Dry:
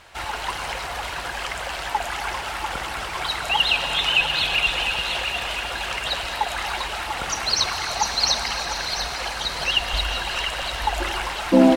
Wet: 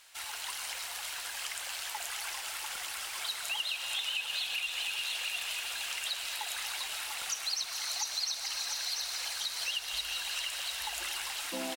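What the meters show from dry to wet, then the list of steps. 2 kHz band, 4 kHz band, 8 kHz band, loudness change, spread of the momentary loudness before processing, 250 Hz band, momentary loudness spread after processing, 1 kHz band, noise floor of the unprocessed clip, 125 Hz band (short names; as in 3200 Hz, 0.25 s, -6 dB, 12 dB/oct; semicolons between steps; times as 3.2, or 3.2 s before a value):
-12.5 dB, -10.0 dB, -4.0 dB, -10.5 dB, 10 LU, under -25 dB, 5 LU, -18.5 dB, -31 dBFS, under -30 dB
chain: pre-emphasis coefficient 0.97; compressor 5:1, threshold -32 dBFS, peak gain reduction 11 dB; on a send: frequency-shifting echo 0.428 s, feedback 64%, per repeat -60 Hz, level -11 dB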